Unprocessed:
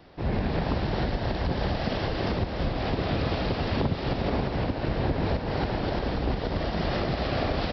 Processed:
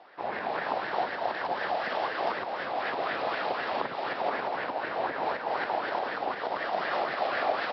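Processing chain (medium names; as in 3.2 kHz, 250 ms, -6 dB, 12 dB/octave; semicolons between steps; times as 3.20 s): high-pass 530 Hz 12 dB/octave; distance through air 130 m; sweeping bell 4 Hz 710–1800 Hz +12 dB; trim -1.5 dB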